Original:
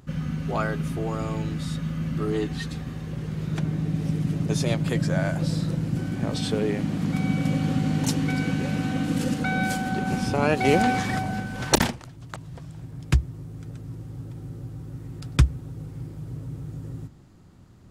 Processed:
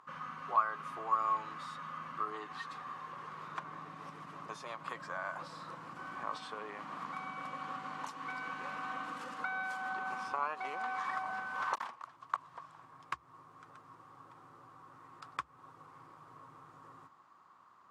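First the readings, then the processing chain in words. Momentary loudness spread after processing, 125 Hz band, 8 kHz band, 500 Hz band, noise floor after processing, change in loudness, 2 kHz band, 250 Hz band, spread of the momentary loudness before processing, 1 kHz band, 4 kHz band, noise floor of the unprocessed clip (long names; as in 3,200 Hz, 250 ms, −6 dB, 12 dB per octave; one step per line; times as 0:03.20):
21 LU, −33.5 dB, −24.5 dB, −19.5 dB, −62 dBFS, −13.5 dB, −9.0 dB, −28.5 dB, 15 LU, −4.5 dB, −18.0 dB, −47 dBFS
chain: spectral tilt +2.5 dB per octave
downward compressor 10 to 1, threshold −30 dBFS, peak gain reduction 20 dB
resonant band-pass 1,100 Hz, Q 8.9
level +13.5 dB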